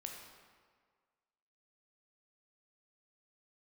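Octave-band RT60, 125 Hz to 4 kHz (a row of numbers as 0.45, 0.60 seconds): 1.5, 1.6, 1.7, 1.7, 1.5, 1.2 seconds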